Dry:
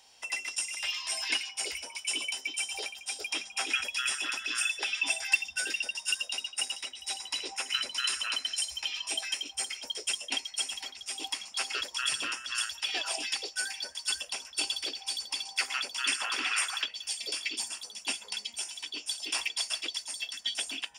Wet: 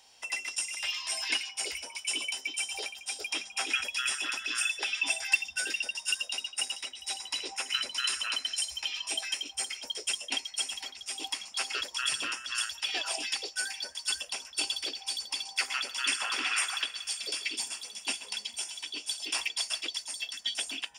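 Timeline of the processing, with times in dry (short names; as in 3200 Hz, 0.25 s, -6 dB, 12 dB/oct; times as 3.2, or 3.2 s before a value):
15.56–19.23 thinning echo 0.129 s, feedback 73%, level -16 dB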